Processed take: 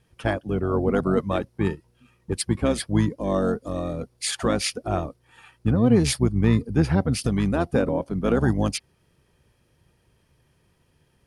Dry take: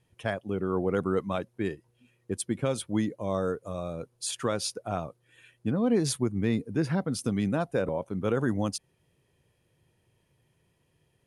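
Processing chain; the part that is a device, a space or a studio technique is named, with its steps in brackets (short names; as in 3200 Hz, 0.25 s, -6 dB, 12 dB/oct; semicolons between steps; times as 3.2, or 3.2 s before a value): octave pedal (harmoniser -12 st -3 dB); gain +4.5 dB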